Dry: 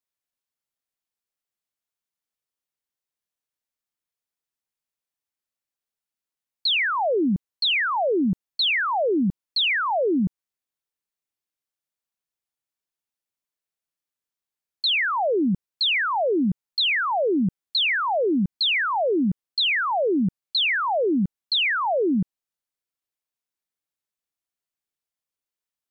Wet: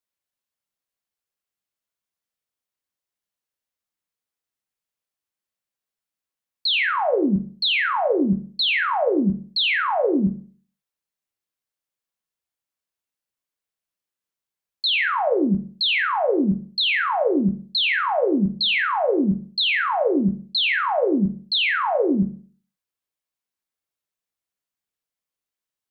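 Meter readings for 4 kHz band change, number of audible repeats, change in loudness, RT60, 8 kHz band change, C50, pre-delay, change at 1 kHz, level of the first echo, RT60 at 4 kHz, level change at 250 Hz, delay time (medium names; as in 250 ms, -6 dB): +0.5 dB, no echo, +1.5 dB, 0.45 s, no reading, 11.0 dB, 6 ms, +1.5 dB, no echo, 0.40 s, +2.0 dB, no echo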